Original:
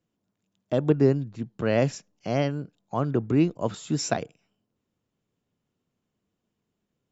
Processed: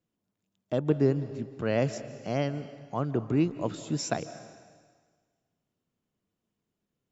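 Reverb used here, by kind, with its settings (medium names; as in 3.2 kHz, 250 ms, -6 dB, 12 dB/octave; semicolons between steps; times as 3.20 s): algorithmic reverb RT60 1.6 s, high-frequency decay 1×, pre-delay 115 ms, DRR 13 dB; trim -4 dB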